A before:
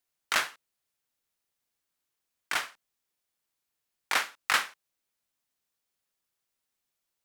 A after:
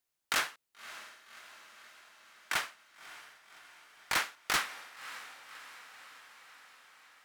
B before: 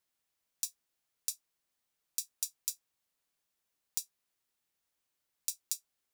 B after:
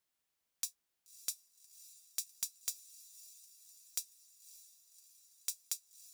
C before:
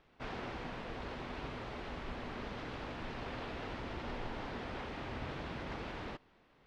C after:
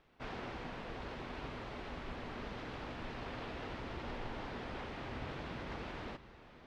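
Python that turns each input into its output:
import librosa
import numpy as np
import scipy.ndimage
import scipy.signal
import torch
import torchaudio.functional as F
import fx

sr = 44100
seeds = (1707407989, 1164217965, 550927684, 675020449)

y = fx.echo_diffused(x, sr, ms=582, feedback_pct=64, wet_db=-16.0)
y = 10.0 ** (-19.5 / 20.0) * (np.abs((y / 10.0 ** (-19.5 / 20.0) + 3.0) % 4.0 - 2.0) - 1.0)
y = y * 10.0 ** (-1.5 / 20.0)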